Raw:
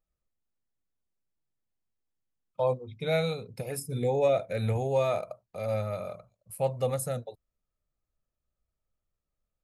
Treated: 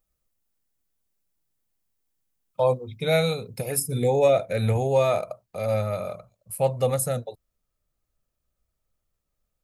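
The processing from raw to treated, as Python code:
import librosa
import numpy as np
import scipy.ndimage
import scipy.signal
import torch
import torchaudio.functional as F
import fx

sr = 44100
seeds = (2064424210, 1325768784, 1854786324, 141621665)

y = fx.high_shelf(x, sr, hz=7600.0, db=fx.steps((0.0, 10.5), (4.3, 4.5)))
y = y * librosa.db_to_amplitude(5.5)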